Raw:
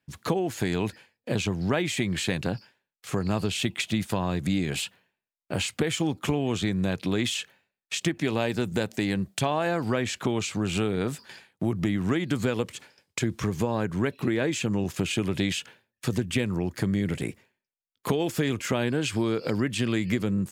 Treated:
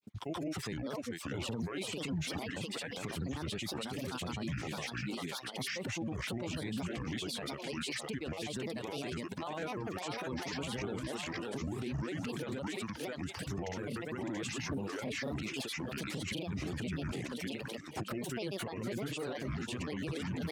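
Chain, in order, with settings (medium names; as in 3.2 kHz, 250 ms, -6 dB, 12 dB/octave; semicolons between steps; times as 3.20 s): on a send: thinning echo 566 ms, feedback 55%, high-pass 340 Hz, level -4 dB; on the sum: granulator, pitch spread up and down by 7 st; high-pass 55 Hz; treble shelf 9.5 kHz -4 dB; peak limiter -29 dBFS, peak gain reduction 17 dB; reverb removal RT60 0.56 s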